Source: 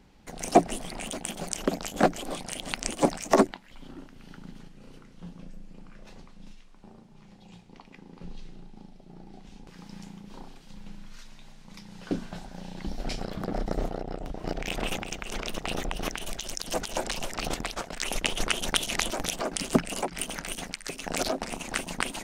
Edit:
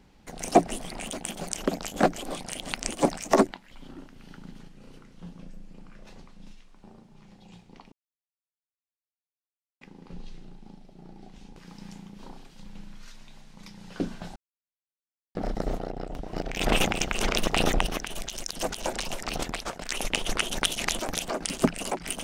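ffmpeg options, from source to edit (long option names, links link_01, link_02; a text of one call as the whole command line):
ffmpeg -i in.wav -filter_complex "[0:a]asplit=6[link_01][link_02][link_03][link_04][link_05][link_06];[link_01]atrim=end=7.92,asetpts=PTS-STARTPTS,afade=type=out:start_time=7.916:duration=0.004:curve=hsin,apad=pad_dur=1.89[link_07];[link_02]atrim=start=7.92:end=12.47,asetpts=PTS-STARTPTS,afade=type=in:duration=0.004:curve=hsin,afade=type=out:start_time=4.546:duration=0.004:curve=hsin[link_08];[link_03]atrim=start=12.47:end=13.46,asetpts=PTS-STARTPTS,volume=0[link_09];[link_04]atrim=start=13.46:end=14.722,asetpts=PTS-STARTPTS,afade=type=in:duration=0.004:curve=hsin[link_10];[link_05]atrim=start=14.718:end=15.982,asetpts=PTS-STARTPTS,volume=8dB[link_11];[link_06]atrim=start=15.978[link_12];[link_07][link_08][link_09][link_10]concat=n=4:v=0:a=1[link_13];[link_13][link_11]acrossfade=duration=0.004:curve1=hsin:curve2=hsin[link_14];[link_14][link_12]acrossfade=duration=0.004:curve1=hsin:curve2=hsin" out.wav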